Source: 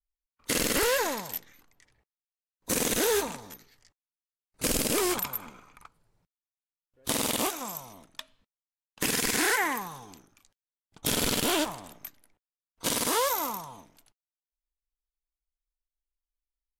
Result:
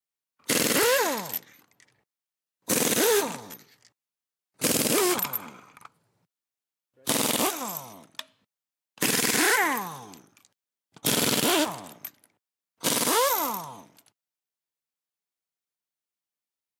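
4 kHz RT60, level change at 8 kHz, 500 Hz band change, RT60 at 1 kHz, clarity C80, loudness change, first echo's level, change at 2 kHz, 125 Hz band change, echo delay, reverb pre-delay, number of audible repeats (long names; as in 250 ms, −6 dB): no reverb audible, +3.5 dB, +3.5 dB, no reverb audible, no reverb audible, +3.5 dB, no echo audible, +3.5 dB, +2.0 dB, no echo audible, no reverb audible, no echo audible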